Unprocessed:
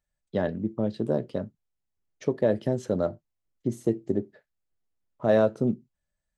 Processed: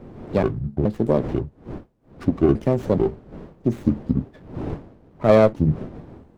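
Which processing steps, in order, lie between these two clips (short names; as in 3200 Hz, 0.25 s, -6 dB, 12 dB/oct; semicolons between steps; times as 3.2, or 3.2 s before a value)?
trilling pitch shifter -7.5 st, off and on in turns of 0.425 s; wind noise 330 Hz -44 dBFS; running maximum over 9 samples; gain +7 dB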